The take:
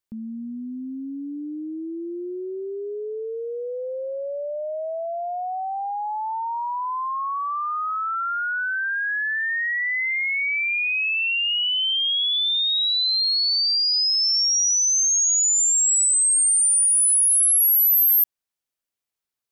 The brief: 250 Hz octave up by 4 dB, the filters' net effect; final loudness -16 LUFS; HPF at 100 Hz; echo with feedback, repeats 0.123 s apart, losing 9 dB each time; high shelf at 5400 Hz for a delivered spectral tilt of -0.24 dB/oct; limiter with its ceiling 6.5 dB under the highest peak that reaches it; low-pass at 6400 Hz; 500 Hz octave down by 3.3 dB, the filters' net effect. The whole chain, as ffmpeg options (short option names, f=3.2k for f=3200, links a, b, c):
-af "highpass=100,lowpass=6.4k,equalizer=f=250:t=o:g=7,equalizer=f=500:t=o:g=-6.5,highshelf=f=5.4k:g=7.5,alimiter=limit=-21.5dB:level=0:latency=1,aecho=1:1:123|246|369|492:0.355|0.124|0.0435|0.0152,volume=7dB"